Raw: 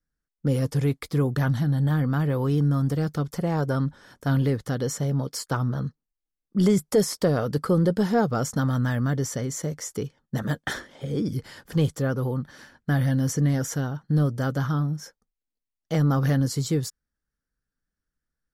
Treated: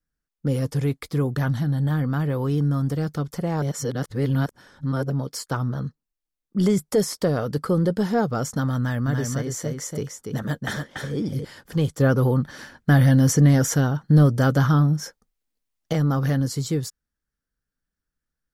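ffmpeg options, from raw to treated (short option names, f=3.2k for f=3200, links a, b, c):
-filter_complex "[0:a]asettb=1/sr,asplit=3[a][b][c];[a]atrim=end=8.784[d];[b]atrim=start=8.78:end=11.45,asetpts=PTS-STARTPTS,afade=t=in:d=0.004:c=qsin,afade=t=out:st=2.666:d=0.004:c=qsin,aecho=1:1:287:0.596,atrim=end_sample=117747[e];[c]atrim=start=11.446[f];[d][e]acrossfade=d=0.004:c1=hsin:c2=qsin[g];[g][f]acrossfade=d=0.004:c1=qsin:c2=hsin,asettb=1/sr,asplit=3[h][i][j];[h]atrim=end=12.004[k];[i]atrim=start=12:end=15.93,asetpts=PTS-STARTPTS,afade=t=in:d=0.004:c=qsin,afade=t=out:st=3.926:d=0.004:c=qsin,acontrast=88[l];[j]atrim=start=15.926[m];[k][l]acrossfade=d=0.004:c1=hsin:c2=qsin[n];[n][m]acrossfade=d=0.004:c1=qsin:c2=hsin,asplit=3[o][p][q];[o]atrim=end=3.622[r];[p]atrim=start=3.618:end=5.102,asetpts=PTS-STARTPTS,areverse[s];[q]atrim=start=5.098[t];[r][s]acrossfade=d=0.004:c1=hsin:c2=hsin[u];[u][t]acrossfade=d=0.004:c1=hsin:c2=hsin"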